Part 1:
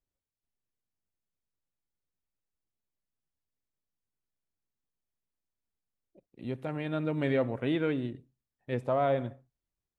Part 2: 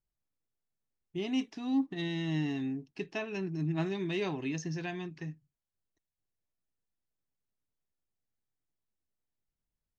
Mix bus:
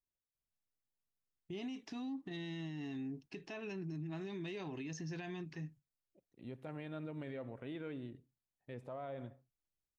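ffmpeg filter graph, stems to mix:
-filter_complex "[0:a]volume=-10dB[a];[1:a]agate=range=-9dB:threshold=-54dB:ratio=16:detection=peak,acompressor=threshold=-33dB:ratio=3,adelay=350,volume=0dB[b];[a][b]amix=inputs=2:normalize=0,alimiter=level_in=12.5dB:limit=-24dB:level=0:latency=1:release=82,volume=-12.5dB"

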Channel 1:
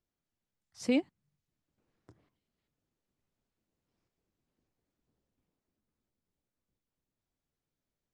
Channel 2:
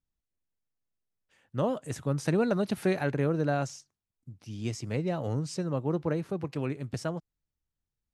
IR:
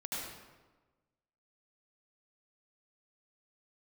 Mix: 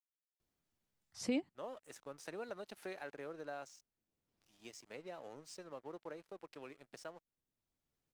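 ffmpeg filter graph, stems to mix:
-filter_complex "[0:a]adelay=400,volume=2.5dB[a];[1:a]highpass=460,aeval=exprs='sgn(val(0))*max(abs(val(0))-0.00266,0)':c=same,volume=-9dB,asplit=2[b][c];[c]apad=whole_len=376503[d];[a][d]sidechaincompress=threshold=-47dB:ratio=8:attack=5.3:release=1470[e];[e][b]amix=inputs=2:normalize=0,acompressor=threshold=-50dB:ratio=1.5"

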